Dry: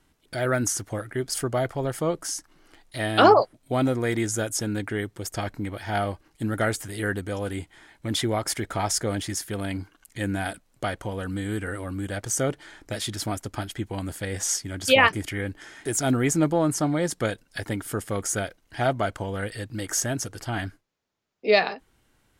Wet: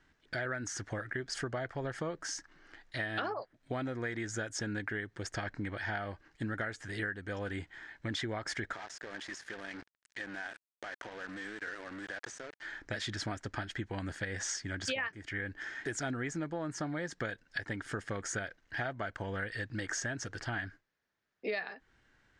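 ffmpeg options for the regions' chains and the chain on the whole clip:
ffmpeg -i in.wav -filter_complex "[0:a]asettb=1/sr,asplit=3[link_01][link_02][link_03];[link_01]atrim=end=8.734[link_04];[link_02]atrim=start=8.73:end=12.62,asetpts=PTS-STARTPTS,afade=type=in:duration=0.004:curve=qsin,afade=type=out:start_time=3.886:duration=0.004:curve=qsin,highpass=340,acompressor=threshold=-36dB:ratio=20:attack=3.2:release=140:knee=1:detection=peak,acrusher=bits=6:mix=0:aa=0.5[link_05];[link_03]atrim=start=12.616[link_06];[link_04][link_05]acrossfade=duration=0.004:curve1=hsin:curve2=qsin[link_07];[link_07][link_06]acrossfade=duration=0.004:curve1=qsin:curve2=hsin,lowpass=frequency=6600:width=0.5412,lowpass=frequency=6600:width=1.3066,equalizer=frequency=1700:width_type=o:width=0.54:gain=11.5,acompressor=threshold=-28dB:ratio=12,volume=-5dB" out.wav

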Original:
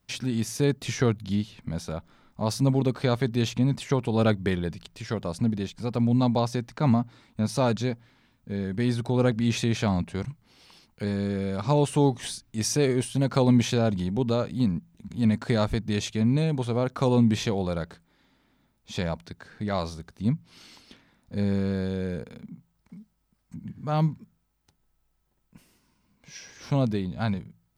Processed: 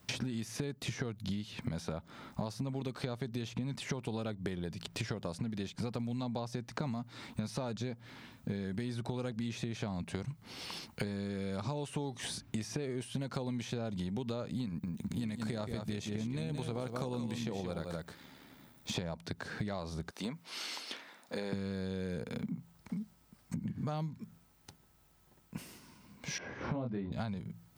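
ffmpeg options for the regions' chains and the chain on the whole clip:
ffmpeg -i in.wav -filter_complex "[0:a]asettb=1/sr,asplit=3[link_01][link_02][link_03];[link_01]atrim=end=14.664[link_04];[link_02]atrim=start=14.66:end=18.95,asetpts=PTS-STARTPTS,afade=type=in:duration=0.004:curve=qsin,afade=type=out:start_time=4.286:duration=0.004:curve=qsin,highshelf=frequency=9600:gain=9.5,aecho=1:1:174:0.376,atrim=end_sample=189189,tremolo=f=73:d=0.462[link_05];[link_03]atrim=start=18.946[link_06];[link_04][link_05]acrossfade=duration=0.004:curve1=hsin:curve2=qsin[link_07];[link_07][link_06]acrossfade=duration=0.004:curve1=qsin:curve2=hsin,asettb=1/sr,asplit=3[link_08][link_09][link_10];[link_08]atrim=end=20.104[link_11];[link_09]atrim=start=20.1:end=21.53,asetpts=PTS-STARTPTS,afade=type=in:duration=0.004:curve=qsin,afade=type=out:start_time=1.426:duration=0.004:curve=qsin,highpass=490,acompressor=threshold=-41dB:ratio=2.5:attack=3.2:release=140:knee=1:detection=peak[link_12];[link_10]atrim=start=21.526[link_13];[link_11][link_12]acrossfade=duration=0.004:curve1=hsin:curve2=qsin[link_14];[link_14][link_13]acrossfade=duration=0.004:curve1=qsin:curve2=hsin,asettb=1/sr,asplit=3[link_15][link_16][link_17];[link_15]atrim=end=26.384[link_18];[link_16]atrim=start=26.38:end=27.12,asetpts=PTS-STARTPTS,afade=type=in:duration=0.004:curve=qsin,afade=type=out:start_time=0.736:duration=0.004:curve=qsin,lowpass=1200,asplit=2[link_19][link_20];[link_20]adelay=25,volume=-3.5dB[link_21];[link_19][link_21]amix=inputs=2:normalize=0,atrim=end_sample=32634[link_22];[link_17]atrim=start=27.116[link_23];[link_18][link_22]acrossfade=duration=0.004:curve1=hsin:curve2=qsin[link_24];[link_24][link_23]acrossfade=duration=0.004:curve1=qsin:curve2=hsin,acrossover=split=1200|3200[link_25][link_26][link_27];[link_25]acompressor=threshold=-33dB:ratio=4[link_28];[link_26]acompressor=threshold=-51dB:ratio=4[link_29];[link_27]acompressor=threshold=-51dB:ratio=4[link_30];[link_28][link_29][link_30]amix=inputs=3:normalize=0,highpass=75,acompressor=threshold=-45dB:ratio=8,volume=10.5dB" out.wav

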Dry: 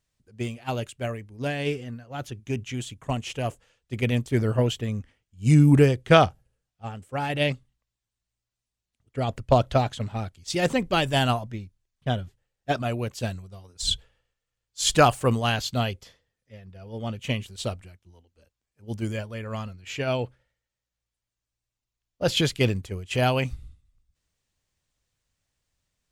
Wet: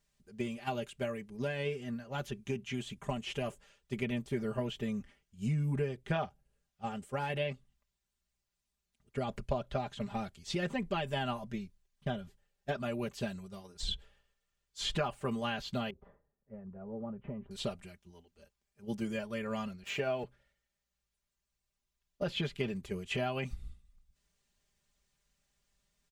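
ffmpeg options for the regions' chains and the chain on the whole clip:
ffmpeg -i in.wav -filter_complex "[0:a]asettb=1/sr,asplit=3[link_01][link_02][link_03];[link_01]atrim=end=15.904[link_04];[link_02]atrim=start=15.9:end=17.51,asetpts=PTS-STARTPTS,afade=type=in:duration=0.004:curve=qsin,afade=type=out:start_time=1.606:duration=0.004:curve=qsin,lowpass=frequency=1200:width=0.5412,lowpass=frequency=1200:width=1.3066,acompressor=threshold=-39dB:ratio=3:attack=3.2:release=140:knee=1:detection=peak[link_05];[link_03]atrim=start=17.506[link_06];[link_04][link_05]acrossfade=duration=0.004:curve1=hsin:curve2=qsin[link_07];[link_07][link_06]acrossfade=duration=0.004:curve1=qsin:curve2=hsin,asettb=1/sr,asplit=3[link_08][link_09][link_10];[link_08]atrim=end=19.834[link_11];[link_09]atrim=start=19.83:end=20.24,asetpts=PTS-STARTPTS,afade=type=in:duration=0.004:curve=qsin,afade=type=out:start_time=0.406:duration=0.004:curve=qsin,highpass=frequency=58:width=0.5412,highpass=frequency=58:width=1.3066,equalizer=frequency=680:width_type=o:width=1.8:gain=6.5,aeval=exprs='sgn(val(0))*max(abs(val(0))-0.00398,0)':channel_layout=same[link_12];[link_10]atrim=start=20.236[link_13];[link_11][link_12]acrossfade=duration=0.004:curve1=hsin:curve2=qsin[link_14];[link_14][link_13]acrossfade=duration=0.004:curve1=qsin:curve2=hsin,acrossover=split=3500[link_15][link_16];[link_16]acompressor=threshold=-48dB:ratio=4:attack=1:release=60[link_17];[link_15][link_17]amix=inputs=2:normalize=0,aecho=1:1:5:0.81,acompressor=threshold=-32dB:ratio=4,volume=-1.5dB" out.wav

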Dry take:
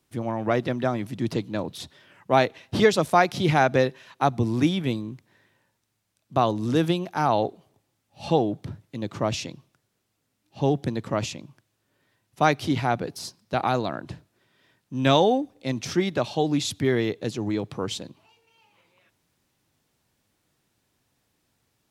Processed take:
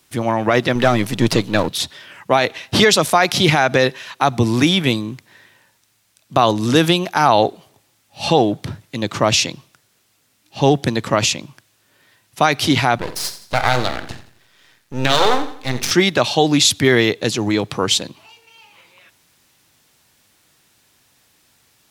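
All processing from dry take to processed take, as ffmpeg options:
ffmpeg -i in.wav -filter_complex "[0:a]asettb=1/sr,asplit=3[link_01][link_02][link_03];[link_01]atrim=end=0.754[link_04];[link_02]atrim=start=0.75:end=1.69,asetpts=PTS-STARTPTS,afade=type=in:duration=0.004:curve=qsin,afade=type=out:start_time=0.936:duration=0.004:curve=qsin,aeval=exprs='if(lt(val(0),0),0.447*val(0),val(0))':channel_layout=same,acontrast=30[link_05];[link_03]atrim=start=1.686[link_06];[link_04][link_05]acrossfade=duration=0.004:curve1=hsin:curve2=qsin[link_07];[link_07][link_06]acrossfade=duration=0.004:curve1=qsin:curve2=hsin,asettb=1/sr,asplit=3[link_08][link_09][link_10];[link_08]atrim=end=12.984[link_11];[link_09]atrim=start=12.98:end=15.91,asetpts=PTS-STARTPTS,afade=type=in:duration=0.004:curve=qsin,afade=type=out:start_time=2.926:duration=0.004:curve=qsin,aeval=exprs='max(val(0),0)':channel_layout=same,asplit=2[link_12][link_13];[link_13]adelay=48,volume=-13.5dB[link_14];[link_12][link_14]amix=inputs=2:normalize=0,atrim=end_sample=129213,aecho=1:1:85|170|255|340:0.211|0.0867|0.0355|0.0146,atrim=end_sample=129213[link_15];[link_10]atrim=start=15.906[link_16];[link_11][link_15]acrossfade=duration=0.004:curve1=hsin:curve2=qsin[link_17];[link_17][link_16]acrossfade=duration=0.004:curve1=qsin:curve2=hsin,tiltshelf=frequency=870:gain=-5,alimiter=level_in=13dB:limit=-1dB:release=50:level=0:latency=1,volume=-1dB" out.wav

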